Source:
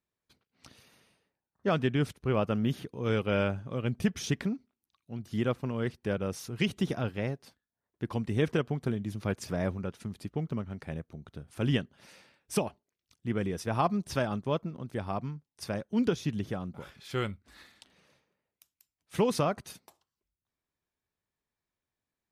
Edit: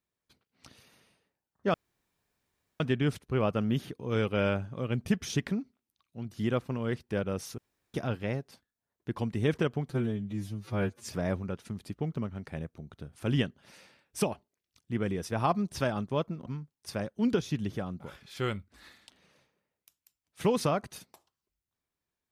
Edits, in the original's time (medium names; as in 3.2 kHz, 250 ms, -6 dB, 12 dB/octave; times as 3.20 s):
1.74 s: insert room tone 1.06 s
6.52–6.88 s: room tone
8.84–9.43 s: stretch 2×
14.81–15.20 s: delete